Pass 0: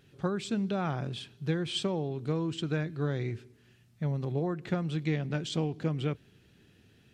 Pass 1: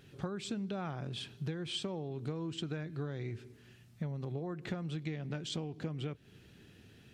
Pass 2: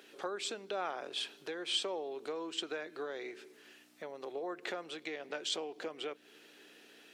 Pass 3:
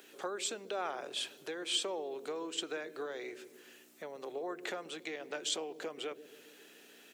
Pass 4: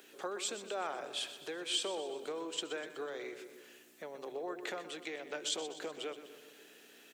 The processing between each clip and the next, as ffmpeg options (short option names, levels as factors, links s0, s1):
-af "acompressor=threshold=0.0126:ratio=10,volume=1.41"
-af "aeval=exprs='val(0)+0.00398*(sin(2*PI*60*n/s)+sin(2*PI*2*60*n/s)/2+sin(2*PI*3*60*n/s)/3+sin(2*PI*4*60*n/s)/4+sin(2*PI*5*60*n/s)/5)':c=same,highpass=f=410:w=0.5412,highpass=f=410:w=1.3066,volume=1.88"
-filter_complex "[0:a]acrossover=split=510|4900[s0][s1][s2];[s0]aecho=1:1:138|276|414|552|690|828|966:0.355|0.202|0.115|0.0657|0.0375|0.0213|0.0122[s3];[s2]aexciter=amount=3:drive=1.3:freq=6300[s4];[s3][s1][s4]amix=inputs=3:normalize=0"
-af "aecho=1:1:124|248|372|496|620|744:0.237|0.133|0.0744|0.0416|0.0233|0.0131,volume=0.891"